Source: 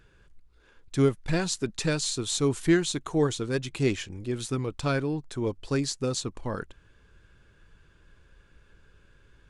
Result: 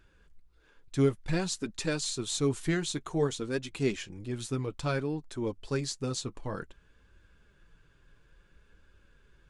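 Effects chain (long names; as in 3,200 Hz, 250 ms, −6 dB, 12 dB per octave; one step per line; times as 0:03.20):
flanger 0.56 Hz, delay 3.1 ms, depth 4.6 ms, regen −45%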